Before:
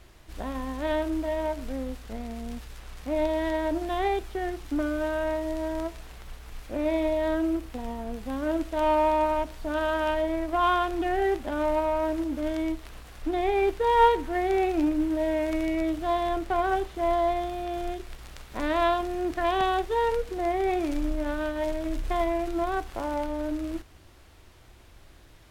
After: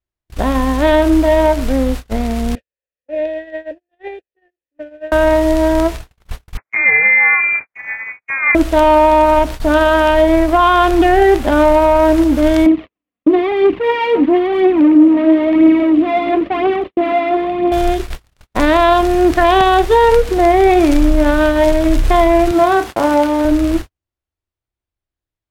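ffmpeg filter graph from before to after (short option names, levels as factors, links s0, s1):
-filter_complex "[0:a]asettb=1/sr,asplit=3[s0][s1][s2];[s0]atrim=end=2.554[s3];[s1]atrim=start=2.55:end=5.12,asetpts=PTS-STARTPTS,afade=t=in:d=0.004:c=qsin,afade=t=out:st=2.566:d=0.004:c=qsin,asplit=3[s4][s5][s6];[s4]bandpass=f=530:t=q:w=8,volume=1[s7];[s5]bandpass=f=1840:t=q:w=8,volume=0.501[s8];[s6]bandpass=f=2480:t=q:w=8,volume=0.355[s9];[s7][s8][s9]amix=inputs=3:normalize=0,bass=f=250:g=5,treble=f=4000:g=-1[s10];[s2]atrim=start=5.116[s11];[s3][s10]acrossfade=d=0.004:c1=hsin:c2=qsin[s12];[s12][s11]acrossfade=d=0.004:c1=qsin:c2=hsin,asettb=1/sr,asplit=3[s13][s14][s15];[s13]atrim=end=6.574[s16];[s14]atrim=start=6.57:end=8.55,asetpts=PTS-STARTPTS,afade=t=in:d=0.004:c=qsin,afade=t=out:st=1.976:d=0.004:c=qsin,highpass=480,lowpass=f=2300:t=q:w=0.5098,lowpass=f=2300:t=q:w=0.6013,lowpass=f=2300:t=q:w=0.9,lowpass=f=2300:t=q:w=2.563,afreqshift=-2700[s17];[s15]atrim=start=8.546[s18];[s16][s17]acrossfade=d=0.004:c1=hsin:c2=qsin[s19];[s19][s18]acrossfade=d=0.004:c1=qsin:c2=hsin,asettb=1/sr,asplit=3[s20][s21][s22];[s20]atrim=end=12.664[s23];[s21]atrim=start=12.66:end=17.72,asetpts=PTS-STARTPTS,afade=t=in:d=0.004:c=qsin,afade=t=out:st=5.056:d=0.004:c=qsin,aeval=exprs='(tanh(31.6*val(0)+0.5)-tanh(0.5))/31.6':c=same,highpass=180,equalizer=f=200:t=q:w=4:g=8,equalizer=f=290:t=q:w=4:g=10,equalizer=f=860:t=q:w=4:g=-7,equalizer=f=1500:t=q:w=4:g=-9,lowpass=f=2900:w=0.5412,lowpass=f=2900:w=1.3066,aphaser=in_gain=1:out_gain=1:delay=4.4:decay=0.46:speed=1:type=triangular[s24];[s22]atrim=start=17.716[s25];[s23][s24]acrossfade=d=0.004:c1=hsin:c2=qsin[s26];[s26][s25]acrossfade=d=0.004:c1=qsin:c2=hsin,asettb=1/sr,asplit=3[s27][s28][s29];[s27]atrim=end=22.514[s30];[s28]atrim=start=22.51:end=23.45,asetpts=PTS-STARTPTS,afade=t=in:d=0.004:c=qsin,afade=t=out:st=0.936:d=0.004:c=qsin,highpass=140,asplit=2[s31][s32];[s32]adelay=31,volume=0.355[s33];[s31][s33]amix=inputs=2:normalize=0,atrim=end_sample=41454[s34];[s29]atrim=start=23.446[s35];[s30][s34]acrossfade=d=0.004:c1=hsin:c2=qsin[s36];[s36][s35]acrossfade=d=0.004:c1=qsin:c2=hsin,agate=range=0.00224:threshold=0.0126:ratio=16:detection=peak,equalizer=f=90:t=o:w=0.96:g=3.5,alimiter=level_in=8.41:limit=0.891:release=50:level=0:latency=1,volume=0.891"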